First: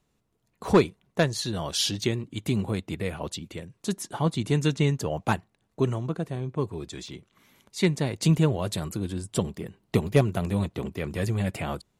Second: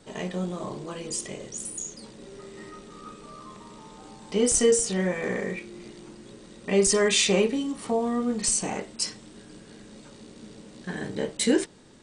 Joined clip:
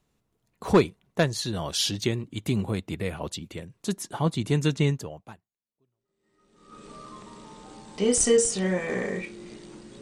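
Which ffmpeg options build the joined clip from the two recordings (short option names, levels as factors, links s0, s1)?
-filter_complex "[0:a]apad=whole_dur=10.01,atrim=end=10.01,atrim=end=6.85,asetpts=PTS-STARTPTS[s0];[1:a]atrim=start=1.25:end=6.35,asetpts=PTS-STARTPTS[s1];[s0][s1]acrossfade=d=1.94:c1=exp:c2=exp"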